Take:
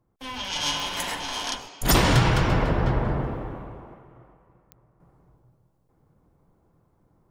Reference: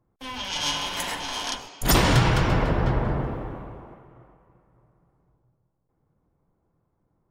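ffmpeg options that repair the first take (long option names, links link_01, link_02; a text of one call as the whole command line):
ffmpeg -i in.wav -af "adeclick=threshold=4,asetnsamples=nb_out_samples=441:pad=0,asendcmd='5 volume volume -7.5dB',volume=0dB" out.wav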